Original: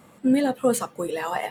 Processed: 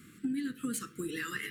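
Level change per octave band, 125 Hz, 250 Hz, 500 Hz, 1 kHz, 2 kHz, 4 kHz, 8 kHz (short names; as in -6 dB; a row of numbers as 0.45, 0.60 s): -7.0, -11.5, -21.0, -19.0, -4.0, -6.0, -8.0 dB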